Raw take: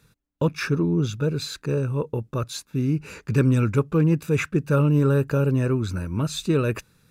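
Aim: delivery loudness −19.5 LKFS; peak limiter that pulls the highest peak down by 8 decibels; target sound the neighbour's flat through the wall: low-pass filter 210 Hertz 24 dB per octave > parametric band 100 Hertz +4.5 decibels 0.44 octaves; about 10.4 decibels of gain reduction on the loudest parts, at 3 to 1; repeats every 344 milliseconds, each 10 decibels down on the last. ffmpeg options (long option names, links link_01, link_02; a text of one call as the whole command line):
ffmpeg -i in.wav -af "acompressor=threshold=-30dB:ratio=3,alimiter=level_in=3dB:limit=-24dB:level=0:latency=1,volume=-3dB,lowpass=frequency=210:width=0.5412,lowpass=frequency=210:width=1.3066,equalizer=frequency=100:width_type=o:width=0.44:gain=4.5,aecho=1:1:344|688|1032|1376:0.316|0.101|0.0324|0.0104,volume=17dB" out.wav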